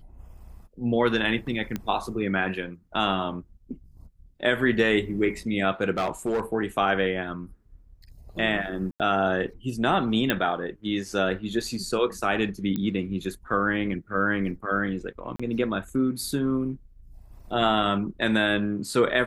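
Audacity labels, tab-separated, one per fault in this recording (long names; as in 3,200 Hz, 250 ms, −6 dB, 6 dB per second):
1.760000	1.760000	click −16 dBFS
5.970000	6.410000	clipping −21 dBFS
8.910000	9.000000	drop-out 88 ms
10.300000	10.300000	click −8 dBFS
12.760000	12.760000	click −17 dBFS
15.360000	15.390000	drop-out 35 ms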